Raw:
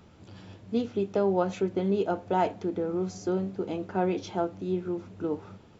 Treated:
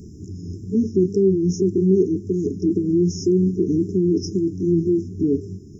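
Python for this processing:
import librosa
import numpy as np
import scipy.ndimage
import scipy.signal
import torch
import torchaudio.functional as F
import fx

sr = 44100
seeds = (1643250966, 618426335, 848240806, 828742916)

p1 = fx.pitch_ramps(x, sr, semitones=-1.5, every_ms=541)
p2 = fx.over_compress(p1, sr, threshold_db=-33.0, ratio=-1.0)
p3 = p1 + (p2 * librosa.db_to_amplitude(-2.0))
p4 = fx.brickwall_bandstop(p3, sr, low_hz=440.0, high_hz=5000.0)
y = p4 * librosa.db_to_amplitude(9.0)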